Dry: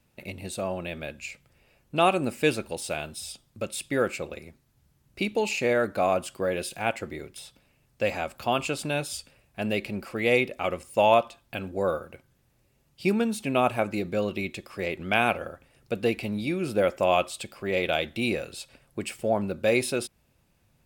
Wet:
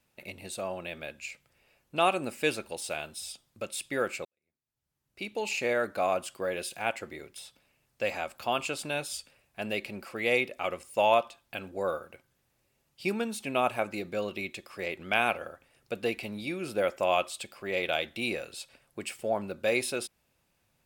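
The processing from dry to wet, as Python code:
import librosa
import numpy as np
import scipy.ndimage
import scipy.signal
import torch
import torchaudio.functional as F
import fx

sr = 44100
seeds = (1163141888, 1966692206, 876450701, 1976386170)

y = fx.edit(x, sr, fx.fade_in_span(start_s=4.25, length_s=1.31, curve='qua'), tone=tone)
y = fx.low_shelf(y, sr, hz=320.0, db=-9.5)
y = y * 10.0 ** (-2.0 / 20.0)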